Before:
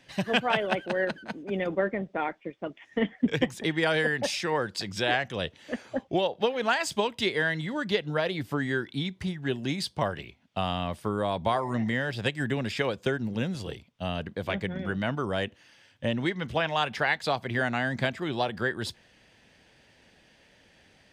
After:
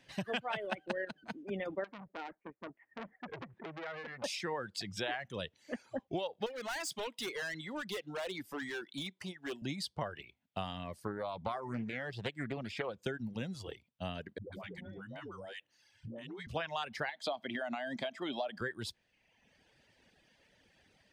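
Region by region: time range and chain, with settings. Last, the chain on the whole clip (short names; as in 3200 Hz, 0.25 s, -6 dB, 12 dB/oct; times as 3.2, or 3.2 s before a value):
0.7–1.23 de-hum 151.3 Hz, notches 5 + transient shaper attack +7 dB, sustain -4 dB
1.84–4.24 LPF 1800 Hz 24 dB/oct + compressor 4:1, threshold -28 dBFS + core saturation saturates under 1900 Hz
6.46–9.62 HPF 260 Hz + high shelf 3500 Hz +4.5 dB + hard clip -29.5 dBFS
11.07–12.99 high shelf 4200 Hz -7 dB + Doppler distortion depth 0.3 ms
14.38–16.47 dispersion highs, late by 0.142 s, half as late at 400 Hz + compressor 8:1, threshold -35 dBFS
17.09–18.61 weighting filter A + compressor 5:1, threshold -29 dBFS + small resonant body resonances 250/620/3200 Hz, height 13 dB, ringing for 25 ms
whole clip: compressor 2.5:1, threshold -28 dBFS; reverb removal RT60 1.1 s; gain -6 dB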